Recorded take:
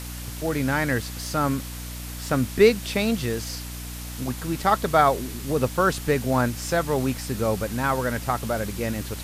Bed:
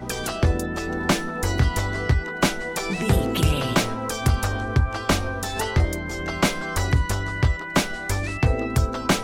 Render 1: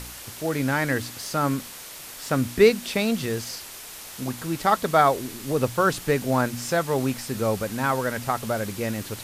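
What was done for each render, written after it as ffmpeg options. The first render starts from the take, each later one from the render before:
ffmpeg -i in.wav -af "bandreject=frequency=60:width_type=h:width=4,bandreject=frequency=120:width_type=h:width=4,bandreject=frequency=180:width_type=h:width=4,bandreject=frequency=240:width_type=h:width=4,bandreject=frequency=300:width_type=h:width=4" out.wav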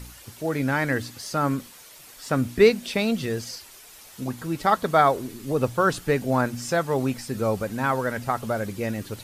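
ffmpeg -i in.wav -af "afftdn=noise_reduction=9:noise_floor=-40" out.wav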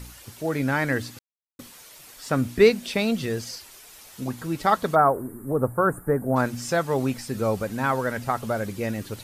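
ffmpeg -i in.wav -filter_complex "[0:a]asplit=3[link_01][link_02][link_03];[link_01]afade=type=out:start_time=4.94:duration=0.02[link_04];[link_02]asuperstop=centerf=4000:order=8:qfactor=0.52,afade=type=in:start_time=4.94:duration=0.02,afade=type=out:start_time=6.35:duration=0.02[link_05];[link_03]afade=type=in:start_time=6.35:duration=0.02[link_06];[link_04][link_05][link_06]amix=inputs=3:normalize=0,asplit=3[link_07][link_08][link_09];[link_07]atrim=end=1.19,asetpts=PTS-STARTPTS,afade=type=out:start_time=1.186:duration=0.004:curve=hsin[link_10];[link_08]atrim=start=1.19:end=1.59,asetpts=PTS-STARTPTS,volume=0[link_11];[link_09]atrim=start=1.59,asetpts=PTS-STARTPTS,afade=type=in:duration=0.004:curve=hsin[link_12];[link_10][link_11][link_12]concat=n=3:v=0:a=1" out.wav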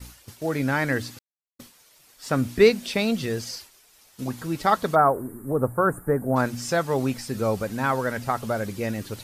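ffmpeg -i in.wav -af "agate=range=-33dB:threshold=-39dB:ratio=3:detection=peak,equalizer=frequency=5000:width_type=o:width=0.77:gain=2" out.wav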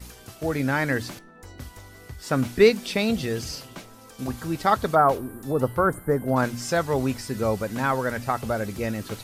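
ffmpeg -i in.wav -i bed.wav -filter_complex "[1:a]volume=-20.5dB[link_01];[0:a][link_01]amix=inputs=2:normalize=0" out.wav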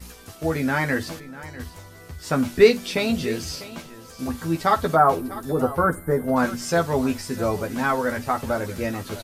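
ffmpeg -i in.wav -filter_complex "[0:a]asplit=2[link_01][link_02];[link_02]adelay=12,volume=-4dB[link_03];[link_01][link_03]amix=inputs=2:normalize=0,aecho=1:1:48|648:0.106|0.15" out.wav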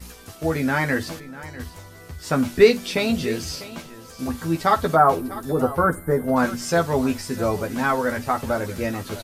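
ffmpeg -i in.wav -af "volume=1dB,alimiter=limit=-3dB:level=0:latency=1" out.wav

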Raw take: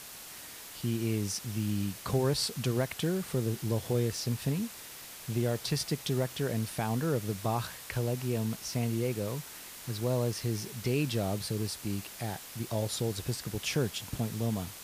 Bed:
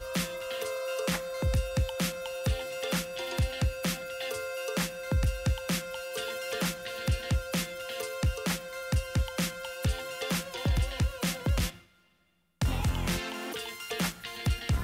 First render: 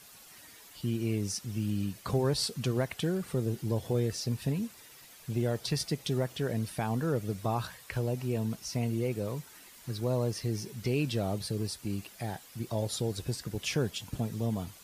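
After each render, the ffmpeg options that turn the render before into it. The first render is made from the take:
ffmpeg -i in.wav -af "afftdn=noise_reduction=10:noise_floor=-47" out.wav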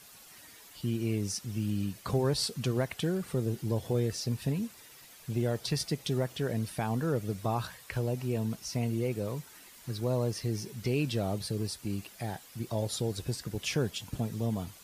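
ffmpeg -i in.wav -af anull out.wav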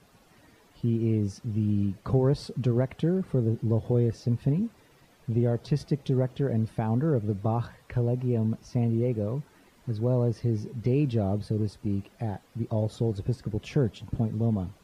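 ffmpeg -i in.wav -af "lowpass=frequency=3100:poles=1,tiltshelf=frequency=970:gain=6.5" out.wav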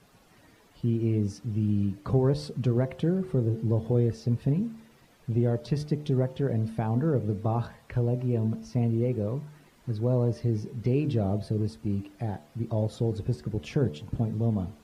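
ffmpeg -i in.wav -af "bandreject=frequency=74.6:width_type=h:width=4,bandreject=frequency=149.2:width_type=h:width=4,bandreject=frequency=223.8:width_type=h:width=4,bandreject=frequency=298.4:width_type=h:width=4,bandreject=frequency=373:width_type=h:width=4,bandreject=frequency=447.6:width_type=h:width=4,bandreject=frequency=522.2:width_type=h:width=4,bandreject=frequency=596.8:width_type=h:width=4,bandreject=frequency=671.4:width_type=h:width=4,bandreject=frequency=746:width_type=h:width=4,bandreject=frequency=820.6:width_type=h:width=4,bandreject=frequency=895.2:width_type=h:width=4,bandreject=frequency=969.8:width_type=h:width=4,bandreject=frequency=1044.4:width_type=h:width=4,bandreject=frequency=1119:width_type=h:width=4" out.wav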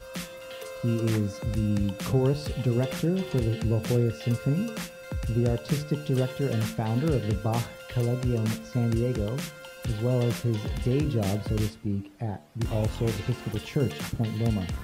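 ffmpeg -i in.wav -i bed.wav -filter_complex "[1:a]volume=-5dB[link_01];[0:a][link_01]amix=inputs=2:normalize=0" out.wav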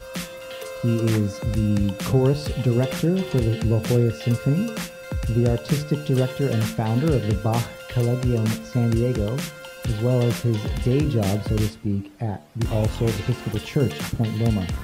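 ffmpeg -i in.wav -af "volume=5dB" out.wav

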